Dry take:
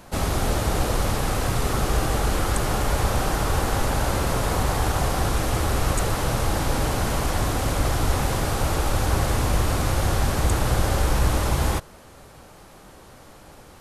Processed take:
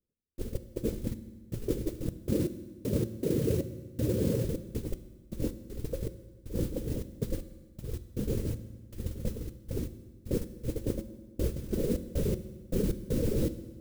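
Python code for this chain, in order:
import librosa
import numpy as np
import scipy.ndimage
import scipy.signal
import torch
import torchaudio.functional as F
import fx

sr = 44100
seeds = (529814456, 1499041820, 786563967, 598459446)

y = fx.delta_mod(x, sr, bps=16000, step_db=-19.0)
y = scipy.signal.sosfilt(scipy.signal.butter(12, 520.0, 'lowpass', fs=sr, output='sos'), y)
y = fx.dereverb_blind(y, sr, rt60_s=1.1)
y = fx.highpass(y, sr, hz=100.0, slope=24, at=(2.13, 4.45))
y = fx.over_compress(y, sr, threshold_db=-31.0, ratio=-0.5)
y = fx.mod_noise(y, sr, seeds[0], snr_db=18)
y = fx.step_gate(y, sr, bpm=79, pattern='..x.xx..xxx.x', floor_db=-60.0, edge_ms=4.5)
y = fx.rev_fdn(y, sr, rt60_s=1.4, lf_ratio=1.3, hf_ratio=0.85, size_ms=27.0, drr_db=11.0)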